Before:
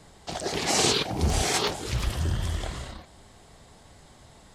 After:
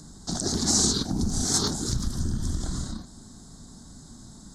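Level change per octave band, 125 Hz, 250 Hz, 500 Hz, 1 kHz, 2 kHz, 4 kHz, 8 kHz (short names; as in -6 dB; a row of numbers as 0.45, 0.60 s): -0.5, +5.0, -6.0, -7.5, -11.5, -1.0, +4.5 dB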